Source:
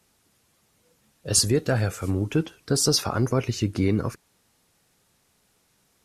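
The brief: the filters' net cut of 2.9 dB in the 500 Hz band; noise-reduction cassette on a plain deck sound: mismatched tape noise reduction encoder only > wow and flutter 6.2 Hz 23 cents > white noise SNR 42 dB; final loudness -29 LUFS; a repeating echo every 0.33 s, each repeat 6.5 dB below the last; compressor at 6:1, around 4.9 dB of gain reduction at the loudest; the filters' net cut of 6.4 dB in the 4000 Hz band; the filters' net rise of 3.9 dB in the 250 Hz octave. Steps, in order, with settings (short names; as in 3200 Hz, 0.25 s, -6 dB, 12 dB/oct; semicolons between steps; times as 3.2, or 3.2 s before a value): bell 250 Hz +7 dB; bell 500 Hz -6.5 dB; bell 4000 Hz -9 dB; compressor 6:1, threshold -20 dBFS; feedback echo 0.33 s, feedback 47%, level -6.5 dB; mismatched tape noise reduction encoder only; wow and flutter 6.2 Hz 23 cents; white noise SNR 42 dB; gain -3 dB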